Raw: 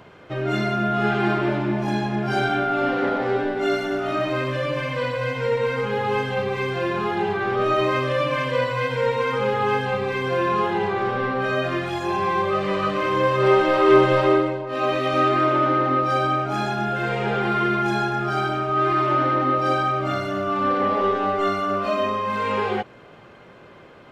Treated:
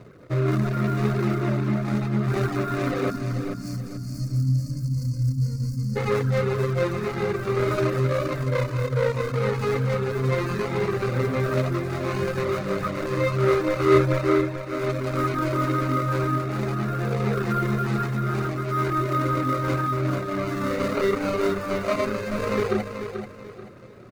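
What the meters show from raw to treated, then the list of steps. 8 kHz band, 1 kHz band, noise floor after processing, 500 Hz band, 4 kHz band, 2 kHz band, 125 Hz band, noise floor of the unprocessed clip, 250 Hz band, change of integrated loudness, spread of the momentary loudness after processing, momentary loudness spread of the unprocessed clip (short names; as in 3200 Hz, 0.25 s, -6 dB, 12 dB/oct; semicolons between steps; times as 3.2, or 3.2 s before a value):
n/a, -8.0 dB, -37 dBFS, -3.0 dB, -7.0 dB, -6.0 dB, +5.5 dB, -46 dBFS, -1.0 dB, -3.0 dB, 5 LU, 6 LU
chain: median filter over 41 samples; reverb removal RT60 0.72 s; notches 50/100/150/200/250/300/350 Hz; spectral gain 3.1–5.96, 300–4200 Hz -30 dB; thirty-one-band EQ 125 Hz +7 dB, 800 Hz -9 dB, 1250 Hz +9 dB, 3150 Hz -5 dB; vocal rider within 4 dB 2 s; small resonant body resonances 2100/3700 Hz, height 8 dB; on a send: feedback echo 0.435 s, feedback 33%, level -8.5 dB; on the sum: gain +1.5 dB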